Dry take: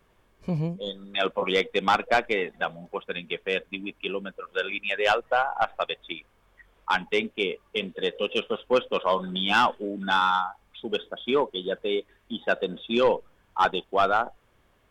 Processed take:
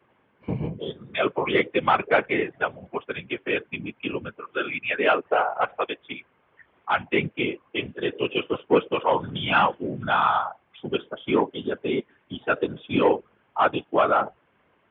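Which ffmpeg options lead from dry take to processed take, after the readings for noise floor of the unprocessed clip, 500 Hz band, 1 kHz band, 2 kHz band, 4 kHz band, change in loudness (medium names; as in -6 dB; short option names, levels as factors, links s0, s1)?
-64 dBFS, +1.5 dB, +1.5 dB, +1.0 dB, -3.5 dB, +1.5 dB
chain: -af "afftfilt=real='hypot(re,im)*cos(2*PI*random(0))':imag='hypot(re,im)*sin(2*PI*random(1))':win_size=512:overlap=0.75,highpass=f=180:t=q:w=0.5412,highpass=f=180:t=q:w=1.307,lowpass=f=3100:t=q:w=0.5176,lowpass=f=3100:t=q:w=0.7071,lowpass=f=3100:t=q:w=1.932,afreqshift=-61,volume=2.51"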